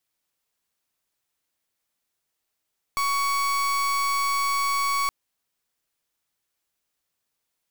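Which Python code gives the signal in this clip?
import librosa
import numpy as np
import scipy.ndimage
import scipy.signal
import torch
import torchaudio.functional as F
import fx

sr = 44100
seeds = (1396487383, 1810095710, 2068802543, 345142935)

y = fx.pulse(sr, length_s=2.12, hz=1120.0, level_db=-24.0, duty_pct=36)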